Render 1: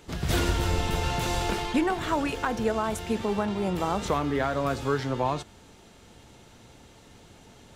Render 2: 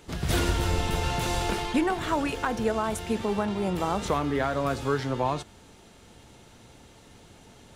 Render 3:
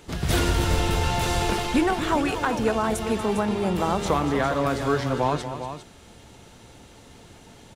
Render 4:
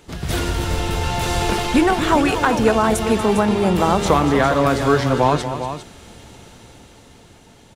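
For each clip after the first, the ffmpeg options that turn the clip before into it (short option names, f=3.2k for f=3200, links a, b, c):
-af "equalizer=f=9.6k:w=6.9:g=5"
-af "aecho=1:1:238|403:0.266|0.316,volume=3dB"
-af "dynaudnorm=f=240:g=13:m=11dB"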